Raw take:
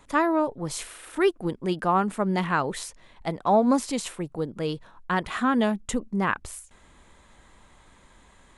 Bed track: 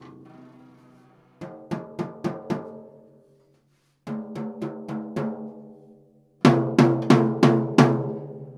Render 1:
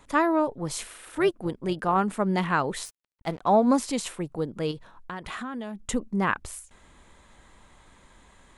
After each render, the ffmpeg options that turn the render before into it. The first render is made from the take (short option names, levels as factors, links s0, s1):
-filter_complex "[0:a]asettb=1/sr,asplit=3[s0][s1][s2];[s0]atrim=end=0.814[s3];[s1]atrim=start=0.81:end=1.98,asetpts=PTS-STARTPTS,afade=t=in:d=0.004:c=qsin,afade=t=out:st=1.166:d=0.004:c=qsin,tremolo=f=220:d=0.333[s4];[s2]atrim=start=1.976[s5];[s3][s4]acrossfade=d=0.004:c1=hsin:c2=qsin[s6];[s6][s5]acrossfade=d=0.004:c1=qsin:c2=hsin,asettb=1/sr,asplit=3[s7][s8][s9];[s7]atrim=end=2.854[s10];[s8]atrim=start=2.85:end=3.41,asetpts=PTS-STARTPTS,afade=t=in:d=0.004:c=qsin,afade=t=out:st=0.556:d=0.004:c=qsin,aeval=exprs='sgn(val(0))*max(abs(val(0))-0.00668,0)':c=same[s11];[s9]atrim=start=3.406[s12];[s10][s11]acrossfade=d=0.004:c1=hsin:c2=qsin[s13];[s13][s12]acrossfade=d=0.004:c1=qsin:c2=hsin,asettb=1/sr,asplit=3[s14][s15][s16];[s14]atrim=end=4.714[s17];[s15]atrim=start=4.71:end=5.86,asetpts=PTS-STARTPTS,afade=t=in:d=0.004:c=qsin,afade=t=out:st=1.146:d=0.004:c=qsin,acompressor=threshold=0.0251:ratio=6:attack=3.2:release=140:knee=1:detection=peak[s18];[s16]atrim=start=5.856[s19];[s17][s18]acrossfade=d=0.004:c1=hsin:c2=qsin[s20];[s20][s19]acrossfade=d=0.004:c1=qsin:c2=hsin"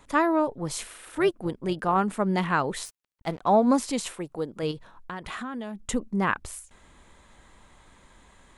-filter_complex "[0:a]asettb=1/sr,asplit=3[s0][s1][s2];[s0]atrim=end=4.134[s3];[s1]atrim=start=4.13:end=4.63,asetpts=PTS-STARTPTS,afade=t=in:d=0.004:c=qsin,afade=t=out:st=0.496:d=0.004:c=qsin,bass=f=250:g=-7,treble=f=4000:g=1[s4];[s2]atrim=start=4.626[s5];[s3][s4]acrossfade=d=0.004:c1=hsin:c2=qsin[s6];[s6][s5]acrossfade=d=0.004:c1=qsin:c2=hsin"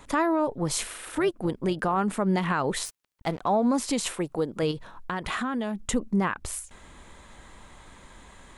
-filter_complex "[0:a]asplit=2[s0][s1];[s1]acompressor=threshold=0.0316:ratio=6,volume=0.944[s2];[s0][s2]amix=inputs=2:normalize=0,alimiter=limit=0.158:level=0:latency=1:release=79"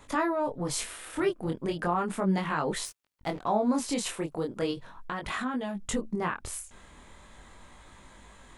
-af "flanger=delay=19.5:depth=5.6:speed=0.37"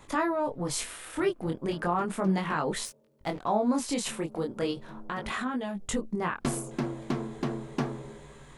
-filter_complex "[1:a]volume=0.178[s0];[0:a][s0]amix=inputs=2:normalize=0"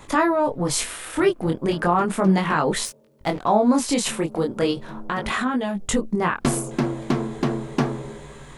-af "volume=2.66"